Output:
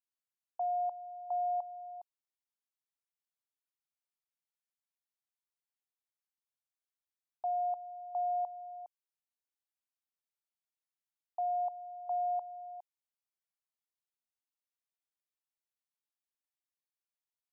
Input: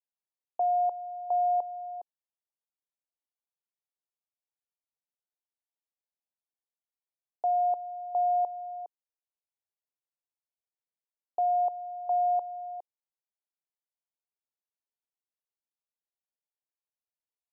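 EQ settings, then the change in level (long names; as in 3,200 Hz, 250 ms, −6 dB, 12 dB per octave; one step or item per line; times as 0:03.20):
high-pass filter 720 Hz 24 dB per octave
−4.0 dB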